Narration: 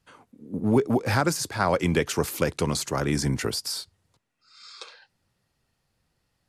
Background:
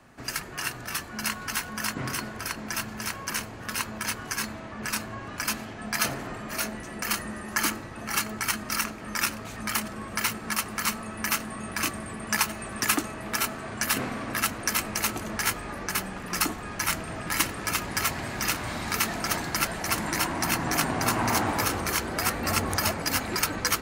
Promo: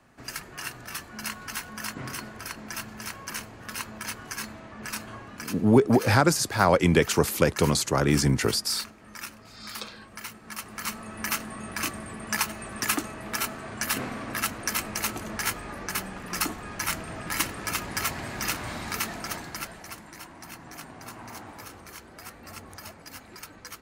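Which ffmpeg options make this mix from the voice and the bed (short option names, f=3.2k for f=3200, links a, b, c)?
-filter_complex "[0:a]adelay=5000,volume=3dB[a];[1:a]volume=5.5dB,afade=t=out:st=5.16:d=0.48:silence=0.421697,afade=t=in:st=10.43:d=0.81:silence=0.316228,afade=t=out:st=18.68:d=1.36:silence=0.177828[b];[a][b]amix=inputs=2:normalize=0"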